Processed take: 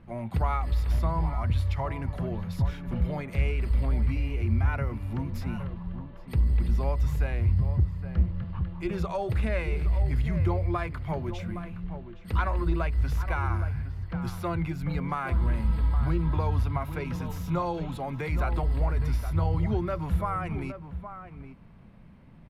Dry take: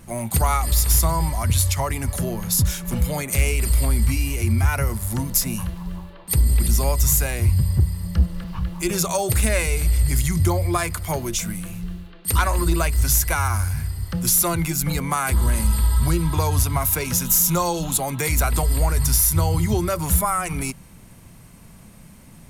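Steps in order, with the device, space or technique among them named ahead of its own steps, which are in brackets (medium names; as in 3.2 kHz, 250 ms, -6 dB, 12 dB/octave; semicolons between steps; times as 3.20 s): shout across a valley (distance through air 390 m; echo from a far wall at 140 m, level -10 dB); trim -6 dB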